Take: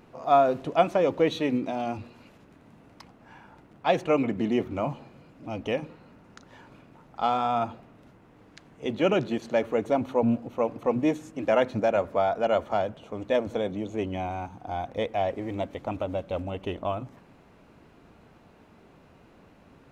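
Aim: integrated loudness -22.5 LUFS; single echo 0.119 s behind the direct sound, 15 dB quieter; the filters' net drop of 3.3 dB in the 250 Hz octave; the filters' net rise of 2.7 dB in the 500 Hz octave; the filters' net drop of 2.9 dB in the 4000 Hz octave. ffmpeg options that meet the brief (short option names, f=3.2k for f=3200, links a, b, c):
-af "equalizer=f=250:t=o:g=-5.5,equalizer=f=500:t=o:g=4.5,equalizer=f=4k:t=o:g=-4,aecho=1:1:119:0.178,volume=3dB"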